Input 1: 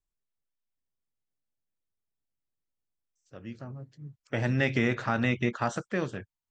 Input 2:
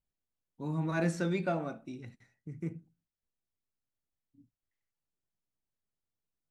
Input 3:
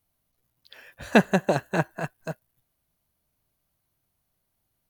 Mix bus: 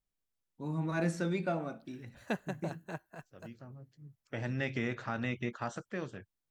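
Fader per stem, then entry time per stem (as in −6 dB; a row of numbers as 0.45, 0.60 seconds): −8.5, −1.5, −17.5 decibels; 0.00, 0.00, 1.15 seconds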